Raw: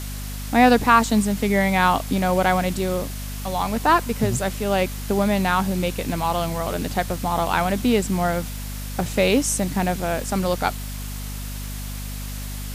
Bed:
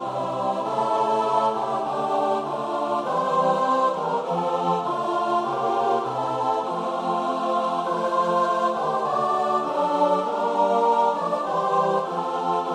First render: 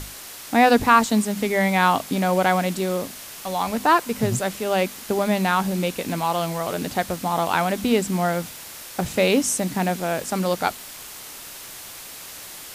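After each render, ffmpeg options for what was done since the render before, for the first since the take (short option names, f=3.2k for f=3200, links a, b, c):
-af "bandreject=f=50:t=h:w=6,bandreject=f=100:t=h:w=6,bandreject=f=150:t=h:w=6,bandreject=f=200:t=h:w=6,bandreject=f=250:t=h:w=6"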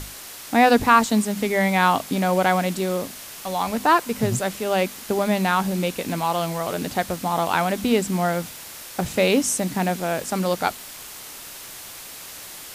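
-af anull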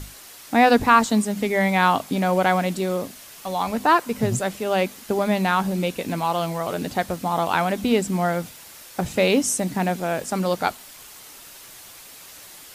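-af "afftdn=nr=6:nf=-39"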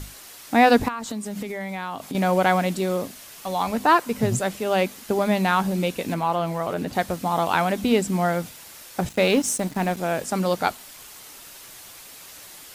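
-filter_complex "[0:a]asettb=1/sr,asplit=3[a][b][c];[a]atrim=end=0.884[d];[b]atrim=start=0.88:end=2.15,asetpts=PTS-STARTPTS,afade=t=in:d=0.004:c=qsin,afade=t=out:st=1.266:d=0.004:c=qsin,acompressor=threshold=-27dB:ratio=8:attack=3.2:release=140:knee=1:detection=peak[e];[c]atrim=start=2.146[f];[d][e]acrossfade=d=0.004:c1=hsin:c2=qsin[g];[g][f]acrossfade=d=0.004:c1=qsin:c2=hsin,asettb=1/sr,asplit=3[h][i][j];[h]atrim=end=6.144[k];[i]atrim=start=6.14:end=6.93,asetpts=PTS-STARTPTS,afade=t=in:d=0.004:c=qsin,afade=t=out:st=0.786:d=0.004:c=qsin,acrossover=split=2600[l][m];[m]acompressor=threshold=-45dB:ratio=4:attack=1:release=60[n];[l][n]amix=inputs=2:normalize=0[o];[j]atrim=start=6.926[p];[k][o]acrossfade=d=0.004:c1=hsin:c2=qsin[q];[q][p]acrossfade=d=0.004:c1=qsin:c2=hsin,asettb=1/sr,asplit=3[r][s][t];[r]atrim=end=9.094[u];[s]atrim=start=9.09:end=9.97,asetpts=PTS-STARTPTS,afade=t=in:d=0.004:c=qsin,afade=t=out:st=0.876:d=0.004:c=qsin,aeval=exprs='sgn(val(0))*max(abs(val(0))-0.015,0)':c=same[v];[t]atrim=start=9.966[w];[u][v]acrossfade=d=0.004:c1=hsin:c2=qsin[x];[x][w]acrossfade=d=0.004:c1=qsin:c2=hsin"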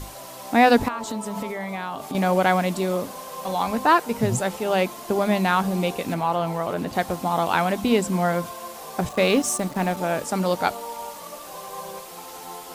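-filter_complex "[1:a]volume=-15dB[a];[0:a][a]amix=inputs=2:normalize=0"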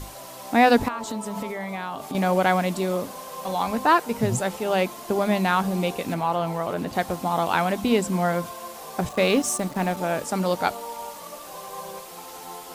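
-af "volume=-1dB"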